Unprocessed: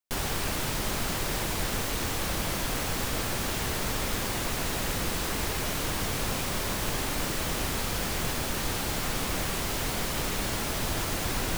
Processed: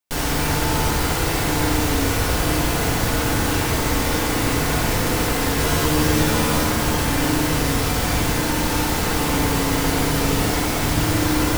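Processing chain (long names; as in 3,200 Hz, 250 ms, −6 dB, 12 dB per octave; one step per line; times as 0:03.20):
0:05.56–0:06.64: double-tracking delay 13 ms −3.5 dB
feedback delay network reverb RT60 2.1 s, low-frequency decay 1.25×, high-frequency decay 0.35×, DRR −4 dB
level +4 dB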